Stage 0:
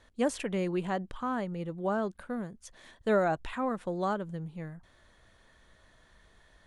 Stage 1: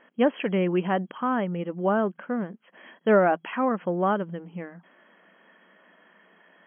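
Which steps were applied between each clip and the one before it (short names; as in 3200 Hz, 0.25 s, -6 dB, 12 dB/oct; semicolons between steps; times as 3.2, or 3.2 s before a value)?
FFT band-pass 170–3300 Hz; gain +7 dB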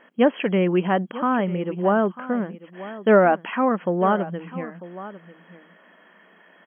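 echo 0.945 s -16 dB; gain +4 dB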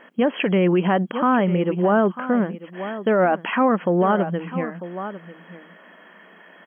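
limiter -16 dBFS, peak gain reduction 11 dB; gain +5.5 dB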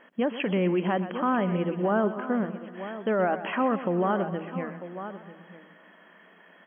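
warbling echo 0.126 s, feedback 59%, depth 61 cents, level -13 dB; gain -7 dB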